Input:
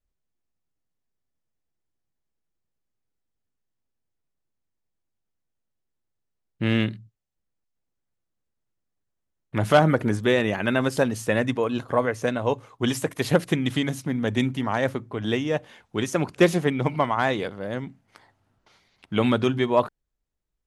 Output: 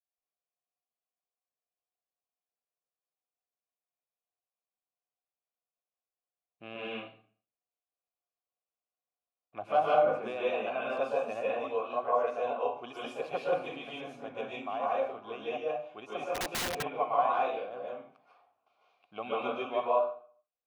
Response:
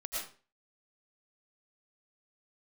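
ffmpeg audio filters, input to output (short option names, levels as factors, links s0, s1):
-filter_complex "[0:a]asplit=3[s0][s1][s2];[s0]bandpass=f=730:t=q:w=8,volume=1[s3];[s1]bandpass=f=1090:t=q:w=8,volume=0.501[s4];[s2]bandpass=f=2440:t=q:w=8,volume=0.355[s5];[s3][s4][s5]amix=inputs=3:normalize=0[s6];[1:a]atrim=start_sample=2205,asetrate=33516,aresample=44100[s7];[s6][s7]afir=irnorm=-1:irlink=0,asplit=3[s8][s9][s10];[s8]afade=t=out:st=16.34:d=0.02[s11];[s9]aeval=exprs='(mod(25.1*val(0)+1,2)-1)/25.1':c=same,afade=t=in:st=16.34:d=0.02,afade=t=out:st=16.82:d=0.02[s12];[s10]afade=t=in:st=16.82:d=0.02[s13];[s11][s12][s13]amix=inputs=3:normalize=0"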